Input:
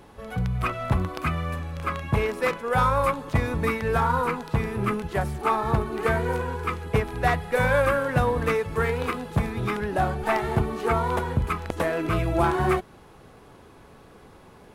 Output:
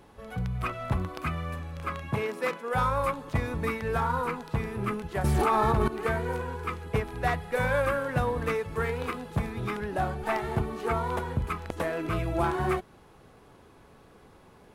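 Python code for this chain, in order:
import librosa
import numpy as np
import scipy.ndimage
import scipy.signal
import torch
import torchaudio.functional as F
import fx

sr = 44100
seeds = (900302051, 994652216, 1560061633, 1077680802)

y = fx.highpass(x, sr, hz=fx.line((2.11, 96.0), (2.72, 200.0)), slope=24, at=(2.11, 2.72), fade=0.02)
y = fx.env_flatten(y, sr, amount_pct=100, at=(5.24, 5.88))
y = y * 10.0 ** (-5.0 / 20.0)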